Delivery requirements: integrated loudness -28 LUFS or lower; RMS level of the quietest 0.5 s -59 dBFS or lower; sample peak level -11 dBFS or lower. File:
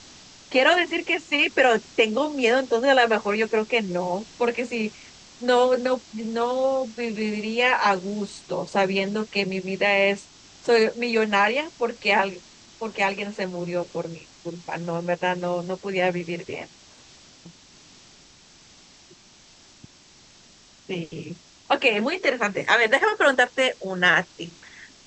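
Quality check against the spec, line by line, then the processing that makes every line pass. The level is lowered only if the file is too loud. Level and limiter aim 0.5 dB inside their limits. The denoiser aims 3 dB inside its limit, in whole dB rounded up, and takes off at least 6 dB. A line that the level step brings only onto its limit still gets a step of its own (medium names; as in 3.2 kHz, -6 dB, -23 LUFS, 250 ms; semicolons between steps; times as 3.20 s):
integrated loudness -23.0 LUFS: fail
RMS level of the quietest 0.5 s -52 dBFS: fail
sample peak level -5.5 dBFS: fail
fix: noise reduction 6 dB, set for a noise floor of -52 dBFS; trim -5.5 dB; peak limiter -11.5 dBFS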